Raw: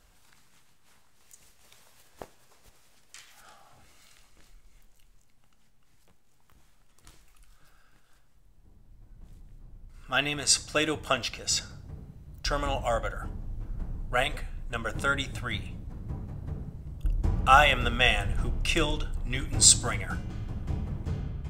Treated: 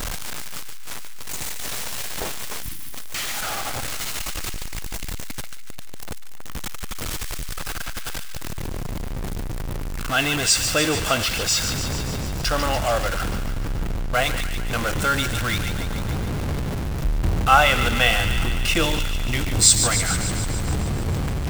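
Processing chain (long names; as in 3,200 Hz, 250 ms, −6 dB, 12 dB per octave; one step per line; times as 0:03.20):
converter with a step at zero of −23.5 dBFS
time-frequency box erased 0:02.63–0:02.93, 350–9,200 Hz
delay with a high-pass on its return 146 ms, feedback 71%, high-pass 1,600 Hz, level −8 dB
one half of a high-frequency compander decoder only
level +2 dB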